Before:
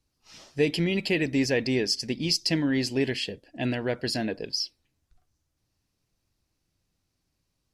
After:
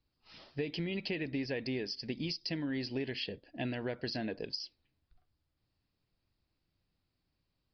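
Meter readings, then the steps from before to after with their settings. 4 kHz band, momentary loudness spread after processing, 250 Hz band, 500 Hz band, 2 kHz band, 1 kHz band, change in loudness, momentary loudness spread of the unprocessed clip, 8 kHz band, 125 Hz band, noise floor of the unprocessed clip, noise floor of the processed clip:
−11.0 dB, 5 LU, −10.0 dB, −10.5 dB, −10.5 dB, −8.5 dB, −10.5 dB, 7 LU, −22.5 dB, −9.5 dB, −78 dBFS, −83 dBFS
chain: downward compressor 6 to 1, threshold −29 dBFS, peak gain reduction 11 dB
downsampling to 11,025 Hz
level −4 dB

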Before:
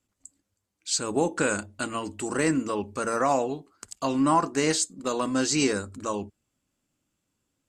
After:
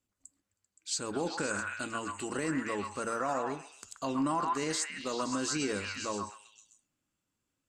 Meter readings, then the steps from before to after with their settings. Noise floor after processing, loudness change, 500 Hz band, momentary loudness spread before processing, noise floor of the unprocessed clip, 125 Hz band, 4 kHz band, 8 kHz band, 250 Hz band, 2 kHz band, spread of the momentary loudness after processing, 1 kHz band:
−85 dBFS, −7.5 dB, −8.5 dB, 9 LU, −80 dBFS, −8.5 dB, −6.0 dB, −7.0 dB, −8.0 dB, −4.5 dB, 8 LU, −6.5 dB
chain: echo through a band-pass that steps 130 ms, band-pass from 1,300 Hz, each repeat 0.7 octaves, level 0 dB
brickwall limiter −16 dBFS, peak gain reduction 7 dB
level −6.5 dB

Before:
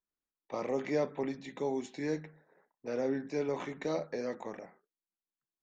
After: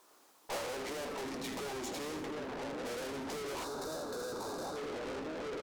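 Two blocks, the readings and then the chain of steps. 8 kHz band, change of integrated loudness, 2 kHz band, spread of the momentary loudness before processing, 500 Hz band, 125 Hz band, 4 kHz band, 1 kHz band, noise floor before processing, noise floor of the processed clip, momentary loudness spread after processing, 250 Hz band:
can't be measured, −4.0 dB, +2.0 dB, 12 LU, −4.5 dB, −5.5 dB, +9.0 dB, +2.0 dB, below −85 dBFS, −65 dBFS, 1 LU, −5.0 dB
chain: downward compressor 6 to 1, threshold −45 dBFS, peak gain reduction 17.5 dB
double-tracking delay 16 ms −10.5 dB
on a send: echo whose low-pass opens from repeat to repeat 697 ms, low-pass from 200 Hz, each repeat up 1 octave, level −6 dB
on the sum: mid-hump overdrive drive 21 dB, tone 6,100 Hz, clips at −32.5 dBFS
flat-topped bell 560 Hz +11.5 dB 2.6 octaves
tube saturation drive 49 dB, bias 0.6
echo with shifted repeats 81 ms, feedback 60%, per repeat −49 Hz, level −9.5 dB
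brickwall limiter −50 dBFS, peak gain reduction 8 dB
gain on a spectral selection 0:03.64–0:04.77, 1,700–3,500 Hz −14 dB
bass and treble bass −1 dB, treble +6 dB
level +15 dB

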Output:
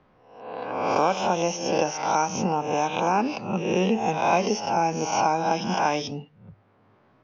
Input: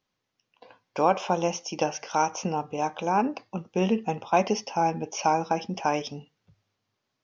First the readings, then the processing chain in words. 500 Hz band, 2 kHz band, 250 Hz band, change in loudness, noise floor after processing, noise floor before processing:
+3.0 dB, +4.5 dB, +2.5 dB, +2.5 dB, −61 dBFS, −81 dBFS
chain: peak hold with a rise ahead of every peak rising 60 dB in 0.73 s
low-pass that shuts in the quiet parts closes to 1,300 Hz, open at −22.5 dBFS
multiband upward and downward compressor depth 70%

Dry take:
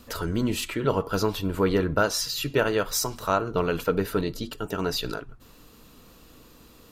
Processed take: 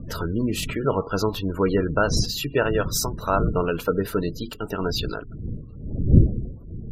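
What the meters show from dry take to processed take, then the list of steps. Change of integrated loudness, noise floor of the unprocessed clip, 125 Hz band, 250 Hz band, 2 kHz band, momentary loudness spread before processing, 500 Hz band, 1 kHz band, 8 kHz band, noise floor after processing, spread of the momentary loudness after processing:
+2.5 dB, −53 dBFS, +8.5 dB, +3.5 dB, +1.0 dB, 6 LU, +1.5 dB, +1.5 dB, +0.5 dB, −39 dBFS, 14 LU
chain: wind on the microphone 140 Hz −28 dBFS
gate on every frequency bin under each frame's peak −25 dB strong
level +1.5 dB

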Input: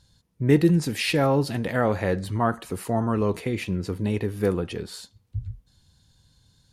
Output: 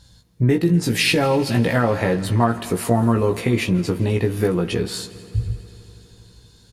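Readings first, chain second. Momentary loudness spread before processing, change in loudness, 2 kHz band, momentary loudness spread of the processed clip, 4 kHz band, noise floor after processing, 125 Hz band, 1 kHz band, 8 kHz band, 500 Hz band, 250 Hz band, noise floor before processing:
15 LU, +4.5 dB, +6.5 dB, 10 LU, +8.0 dB, −52 dBFS, +5.5 dB, +4.5 dB, +8.0 dB, +4.0 dB, +4.5 dB, −65 dBFS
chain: downward compressor 12 to 1, threshold −24 dBFS, peak gain reduction 12 dB
double-tracking delay 17 ms −4 dB
on a send: echo machine with several playback heads 82 ms, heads second and third, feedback 71%, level −21.5 dB
on the sum: level +8.5 dB

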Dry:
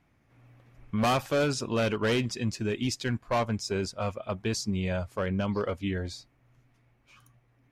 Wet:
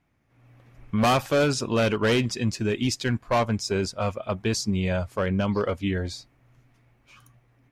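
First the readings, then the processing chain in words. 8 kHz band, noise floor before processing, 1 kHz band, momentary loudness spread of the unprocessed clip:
+4.5 dB, −67 dBFS, +4.5 dB, 7 LU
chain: automatic gain control gain up to 8 dB
level −3.5 dB

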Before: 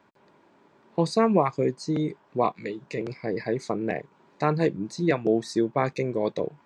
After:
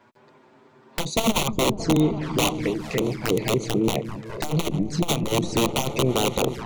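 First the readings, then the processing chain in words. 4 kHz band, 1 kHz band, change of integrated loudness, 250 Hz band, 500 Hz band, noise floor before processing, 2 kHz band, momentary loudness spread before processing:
+14.5 dB, +0.5 dB, +3.0 dB, +3.0 dB, +0.5 dB, −61 dBFS, +4.5 dB, 10 LU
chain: wrap-around overflow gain 19 dB
echo whose low-pass opens from repeat to repeat 208 ms, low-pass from 200 Hz, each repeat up 1 octave, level −6 dB
flanger swept by the level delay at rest 8.8 ms, full sweep at −26.5 dBFS
saturating transformer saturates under 93 Hz
level +8 dB

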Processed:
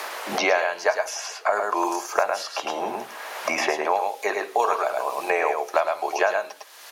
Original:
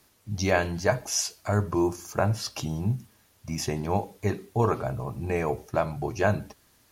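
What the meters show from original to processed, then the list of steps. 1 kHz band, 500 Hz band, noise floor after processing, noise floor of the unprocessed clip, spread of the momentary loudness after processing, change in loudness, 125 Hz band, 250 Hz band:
+8.5 dB, +4.0 dB, −45 dBFS, −63 dBFS, 7 LU, +3.5 dB, below −25 dB, −6.0 dB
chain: high-pass filter 550 Hz 24 dB per octave
high-shelf EQ 5,200 Hz −11 dB
on a send: single-tap delay 105 ms −4.5 dB
on the sum: multiband upward and downward compressor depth 100%
level +7 dB

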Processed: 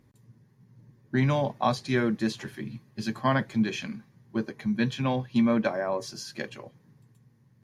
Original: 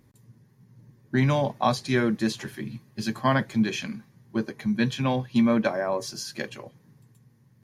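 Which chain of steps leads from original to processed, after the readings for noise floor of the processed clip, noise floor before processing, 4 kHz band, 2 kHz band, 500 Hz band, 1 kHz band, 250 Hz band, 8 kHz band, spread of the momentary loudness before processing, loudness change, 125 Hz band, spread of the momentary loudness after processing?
−62 dBFS, −60 dBFS, −3.5 dB, −2.5 dB, −2.0 dB, −2.0 dB, −2.0 dB, −5.0 dB, 14 LU, −2.0 dB, −2.0 dB, 14 LU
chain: high-shelf EQ 7,400 Hz −7 dB
level −2 dB

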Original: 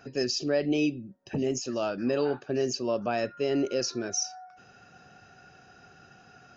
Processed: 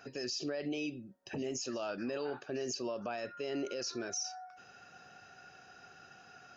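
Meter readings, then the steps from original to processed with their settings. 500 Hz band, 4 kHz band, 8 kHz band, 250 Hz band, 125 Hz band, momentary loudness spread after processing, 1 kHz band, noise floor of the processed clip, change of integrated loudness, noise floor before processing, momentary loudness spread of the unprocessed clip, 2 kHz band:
−10.0 dB, −7.0 dB, can't be measured, −10.0 dB, −12.0 dB, 18 LU, −7.5 dB, −58 dBFS, −9.5 dB, −56 dBFS, 5 LU, −6.5 dB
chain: low-shelf EQ 360 Hz −10 dB
brickwall limiter −29.5 dBFS, peak gain reduction 11.5 dB

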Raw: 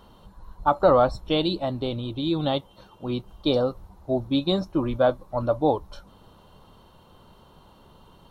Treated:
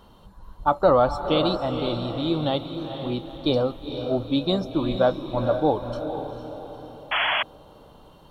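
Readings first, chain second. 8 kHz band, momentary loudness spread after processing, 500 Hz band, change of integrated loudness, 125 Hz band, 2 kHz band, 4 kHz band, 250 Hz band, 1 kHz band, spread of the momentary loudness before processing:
can't be measured, 12 LU, +1.0 dB, 0.0 dB, +1.0 dB, +9.0 dB, +3.0 dB, +1.0 dB, +1.5 dB, 10 LU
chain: feedback delay with all-pass diffusion 471 ms, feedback 47%, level −8 dB
sound drawn into the spectrogram noise, 0:07.11–0:07.43, 570–3,400 Hz −23 dBFS

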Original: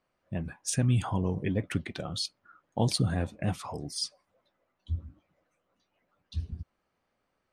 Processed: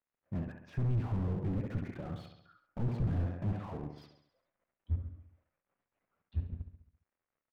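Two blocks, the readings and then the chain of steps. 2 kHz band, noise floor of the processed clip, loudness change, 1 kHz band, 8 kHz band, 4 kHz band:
−12.0 dB, below −85 dBFS, −5.0 dB, −10.0 dB, below −35 dB, below −25 dB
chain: mu-law and A-law mismatch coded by A
low-pass filter 2,300 Hz 24 dB per octave
repeating echo 68 ms, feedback 54%, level −10 dB
slew-rate limiting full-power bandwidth 5 Hz

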